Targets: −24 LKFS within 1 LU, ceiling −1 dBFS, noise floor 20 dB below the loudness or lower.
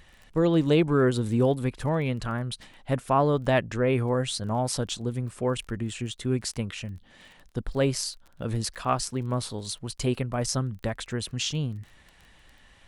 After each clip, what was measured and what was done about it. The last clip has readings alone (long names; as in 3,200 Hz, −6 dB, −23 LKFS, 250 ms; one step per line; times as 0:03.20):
crackle rate 23 per second; integrated loudness −27.5 LKFS; sample peak −10.5 dBFS; target loudness −24.0 LKFS
→ click removal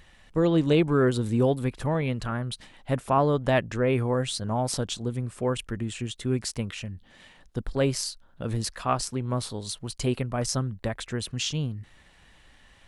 crackle rate 0 per second; integrated loudness −27.5 LKFS; sample peak −10.0 dBFS; target loudness −24.0 LKFS
→ level +3.5 dB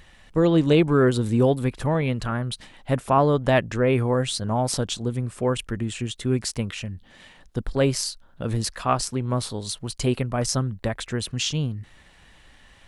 integrated loudness −24.0 LKFS; sample peak −6.5 dBFS; background noise floor −53 dBFS